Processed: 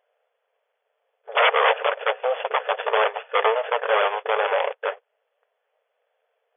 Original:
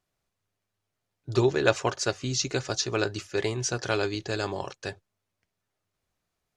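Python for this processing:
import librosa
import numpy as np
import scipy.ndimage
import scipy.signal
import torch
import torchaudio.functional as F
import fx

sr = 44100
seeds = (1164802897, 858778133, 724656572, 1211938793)

y = scipy.signal.medfilt(x, 41)
y = fx.fold_sine(y, sr, drive_db=18, ceiling_db=-11.5)
y = fx.brickwall_bandpass(y, sr, low_hz=430.0, high_hz=3500.0)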